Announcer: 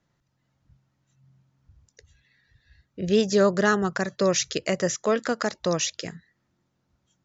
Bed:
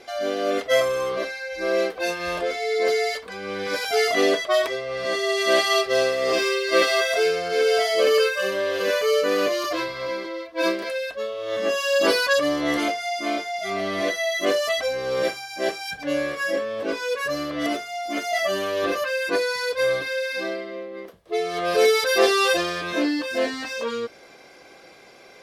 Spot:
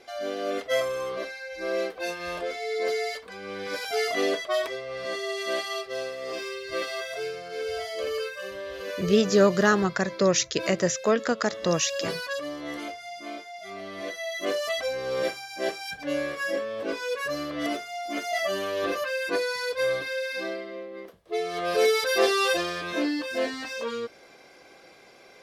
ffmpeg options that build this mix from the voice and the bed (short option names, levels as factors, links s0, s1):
-filter_complex "[0:a]adelay=6000,volume=1.06[s0];[1:a]volume=1.26,afade=t=out:st=4.97:d=0.78:silence=0.501187,afade=t=in:st=13.95:d=0.95:silence=0.398107[s1];[s0][s1]amix=inputs=2:normalize=0"